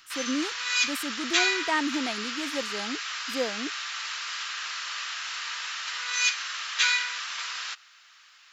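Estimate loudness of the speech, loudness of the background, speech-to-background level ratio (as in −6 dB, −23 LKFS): −33.0 LKFS, −28.5 LKFS, −4.5 dB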